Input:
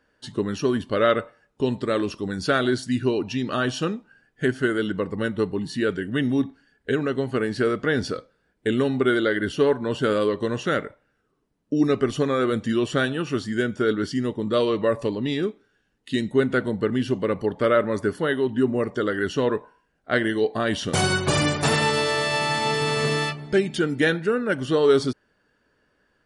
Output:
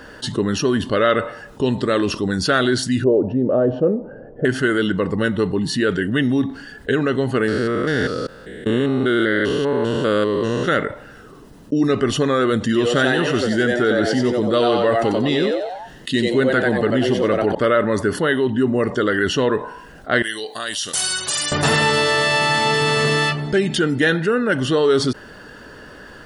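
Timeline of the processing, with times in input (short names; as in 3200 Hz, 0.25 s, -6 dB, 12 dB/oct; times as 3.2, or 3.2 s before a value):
3.04–4.45 synth low-pass 550 Hz
7.48–10.68 stepped spectrum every 0.2 s
12.65–17.55 frequency-shifting echo 92 ms, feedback 35%, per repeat +120 Hz, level -4 dB
20.22–21.52 pre-emphasis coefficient 0.97
whole clip: notch 2300 Hz, Q 7; dynamic EQ 2200 Hz, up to +4 dB, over -37 dBFS, Q 1; fast leveller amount 50%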